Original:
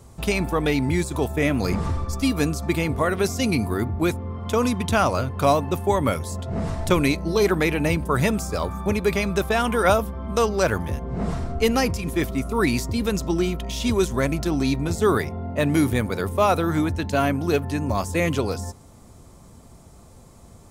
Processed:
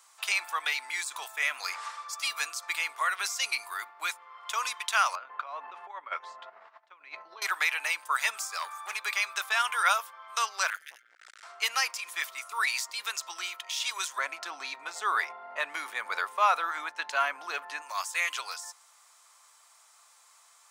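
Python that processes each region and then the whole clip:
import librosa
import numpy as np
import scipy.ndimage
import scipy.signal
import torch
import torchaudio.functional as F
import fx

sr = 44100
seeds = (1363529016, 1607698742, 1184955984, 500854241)

y = fx.chain(x, sr, fx.tilt_eq(slope=-4.0),
    fx.over_compress(threshold_db=-17.0, ratio=-0.5),
    fx.bandpass_edges(low_hz=120.0, high_hz=3000.0), at=(5.15, 7.42))
y = fx.chain(y, sr, fx.peak_eq(hz=9300.0, db=4.5, octaves=0.33),
    fx.notch(hz=520.0, q=15.0),
    fx.clip_hard(threshold_db=-18.0), at=(8.58, 8.99))
y = fx.chain(y, sr, fx.brickwall_bandstop(low_hz=150.0, high_hz=1300.0),
    fx.transformer_sat(knee_hz=670.0), at=(10.7, 11.43))
y = fx.chain(y, sr, fx.tilt_eq(slope=-4.0),
    fx.env_flatten(amount_pct=70), at=(14.18, 17.82))
y = scipy.signal.sosfilt(scipy.signal.butter(4, 1100.0, 'highpass', fs=sr, output='sos'), y)
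y = fx.peak_eq(y, sr, hz=12000.0, db=-7.5, octaves=0.37)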